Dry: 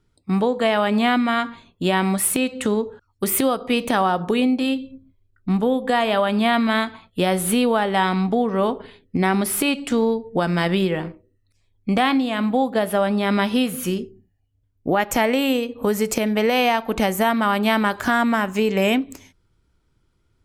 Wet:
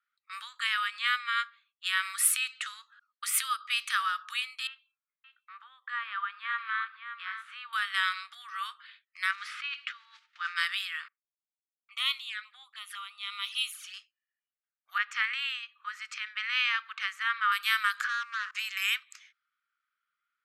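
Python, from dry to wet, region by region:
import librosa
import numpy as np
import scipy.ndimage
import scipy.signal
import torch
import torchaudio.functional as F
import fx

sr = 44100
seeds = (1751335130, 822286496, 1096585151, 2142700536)

y = fx.chain(x, sr, fx.low_shelf(hz=400.0, db=-9.5),
    fx.upward_expand(threshold_db=-41.0, expansion=1.5), at=(0.76, 1.83))
y = fx.chain(y, sr, fx.lowpass(hz=1400.0, slope=12),
    fx.echo_single(ms=569, db=-9.0), at=(4.67, 7.73))
y = fx.chain(y, sr, fx.block_float(bits=5),
    fx.over_compress(threshold_db=-22.0, ratio=-0.5),
    fx.bandpass_edges(low_hz=270.0, high_hz=3200.0), at=(9.31, 10.56))
y = fx.chain(y, sr, fx.env_flanger(rest_ms=11.7, full_db=-17.5),
    fx.band_widen(depth_pct=100), at=(11.08, 13.94))
y = fx.chain(y, sr, fx.bandpass_edges(low_hz=110.0, high_hz=3300.0),
    fx.band_widen(depth_pct=40), at=(14.98, 17.52))
y = fx.chain(y, sr, fx.lowpass(hz=2200.0, slope=12),
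    fx.leveller(passes=2),
    fx.level_steps(step_db=24), at=(18.04, 18.55))
y = fx.env_lowpass(y, sr, base_hz=1900.0, full_db=-16.5)
y = scipy.signal.sosfilt(scipy.signal.cheby1(6, 1.0, 1200.0, 'highpass', fs=sr, output='sos'), y)
y = y * 10.0 ** (-2.0 / 20.0)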